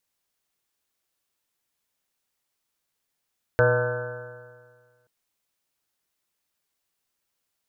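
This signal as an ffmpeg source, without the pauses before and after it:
ffmpeg -f lavfi -i "aevalsrc='0.0891*pow(10,-3*t/1.73)*sin(2*PI*120.16*t)+0.0126*pow(10,-3*t/1.73)*sin(2*PI*241.29*t)+0.0188*pow(10,-3*t/1.73)*sin(2*PI*364.35*t)+0.141*pow(10,-3*t/1.73)*sin(2*PI*490.26*t)+0.0794*pow(10,-3*t/1.73)*sin(2*PI*619.92*t)+0.0133*pow(10,-3*t/1.73)*sin(2*PI*754.18*t)+0.0282*pow(10,-3*t/1.73)*sin(2*PI*893.84*t)+0.0158*pow(10,-3*t/1.73)*sin(2*PI*1039.64*t)+0.02*pow(10,-3*t/1.73)*sin(2*PI*1192.26*t)+0.0316*pow(10,-3*t/1.73)*sin(2*PI*1352.33*t)+0.0794*pow(10,-3*t/1.73)*sin(2*PI*1520.41*t)+0.02*pow(10,-3*t/1.73)*sin(2*PI*1697*t)':duration=1.48:sample_rate=44100" out.wav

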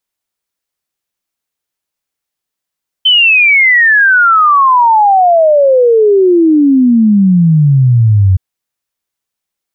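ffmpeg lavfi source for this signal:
ffmpeg -f lavfi -i "aevalsrc='0.631*clip(min(t,5.32-t)/0.01,0,1)*sin(2*PI*3100*5.32/log(91/3100)*(exp(log(91/3100)*t/5.32)-1))':duration=5.32:sample_rate=44100" out.wav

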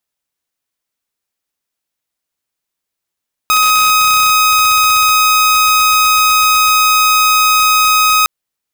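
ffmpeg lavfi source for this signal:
ffmpeg -f lavfi -i "aevalsrc='0.531*(2*mod(1260*t,1)-1)':duration=4.76:sample_rate=44100" out.wav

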